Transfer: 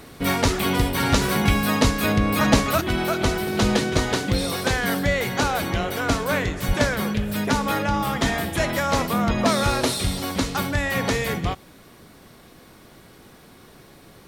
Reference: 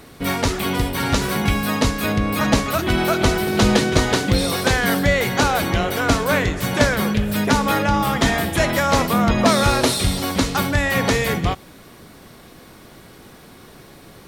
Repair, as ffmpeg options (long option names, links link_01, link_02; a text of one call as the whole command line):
ffmpeg -i in.wav -filter_complex "[0:a]asplit=3[link_01][link_02][link_03];[link_01]afade=type=out:start_time=6.67:duration=0.02[link_04];[link_02]highpass=frequency=140:width=0.5412,highpass=frequency=140:width=1.3066,afade=type=in:start_time=6.67:duration=0.02,afade=type=out:start_time=6.79:duration=0.02[link_05];[link_03]afade=type=in:start_time=6.79:duration=0.02[link_06];[link_04][link_05][link_06]amix=inputs=3:normalize=0,asetnsamples=nb_out_samples=441:pad=0,asendcmd='2.81 volume volume 4.5dB',volume=0dB" out.wav